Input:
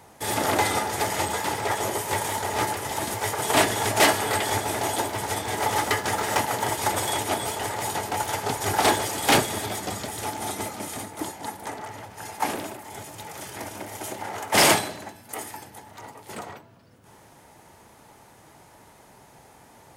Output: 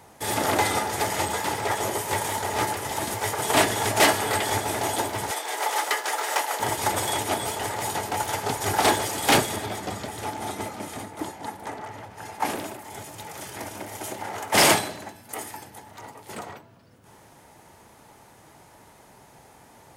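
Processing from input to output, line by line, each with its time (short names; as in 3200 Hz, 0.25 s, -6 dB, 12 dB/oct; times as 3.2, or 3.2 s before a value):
5.31–6.6 Bessel high-pass 560 Hz, order 6
9.56–12.45 high shelf 4500 Hz -7.5 dB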